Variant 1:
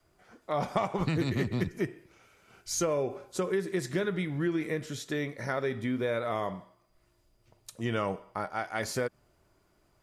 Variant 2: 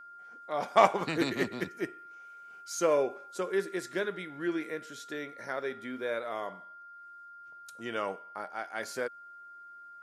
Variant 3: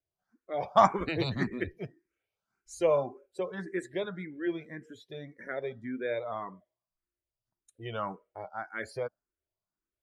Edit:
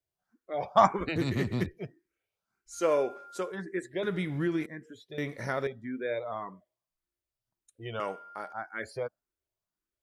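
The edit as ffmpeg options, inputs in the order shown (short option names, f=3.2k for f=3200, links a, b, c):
-filter_complex "[0:a]asplit=3[a][b][c];[1:a]asplit=2[d][e];[2:a]asplit=6[f][g][h][i][j][k];[f]atrim=end=1.162[l];[a]atrim=start=1.158:end=1.662[m];[g]atrim=start=1.658:end=2.87[n];[d]atrim=start=2.71:end=3.58[o];[h]atrim=start=3.42:end=4.032[p];[b]atrim=start=4.028:end=4.662[q];[i]atrim=start=4.658:end=5.182[r];[c]atrim=start=5.178:end=5.672[s];[j]atrim=start=5.668:end=8.002[t];[e]atrim=start=7.998:end=8.532[u];[k]atrim=start=8.528[v];[l][m]acrossfade=d=0.004:c1=hsin:c2=hsin[w];[w][n]acrossfade=d=0.004:c1=hsin:c2=hsin[x];[x][o]acrossfade=d=0.16:c1=tri:c2=tri[y];[y][p]acrossfade=d=0.16:c1=tri:c2=tri[z];[z][q]acrossfade=d=0.004:c1=hsin:c2=hsin[aa];[aa][r]acrossfade=d=0.004:c1=hsin:c2=hsin[ab];[ab][s]acrossfade=d=0.004:c1=hsin:c2=hsin[ac];[ac][t]acrossfade=d=0.004:c1=hsin:c2=hsin[ad];[ad][u]acrossfade=d=0.004:c1=hsin:c2=hsin[ae];[ae][v]acrossfade=d=0.004:c1=hsin:c2=hsin"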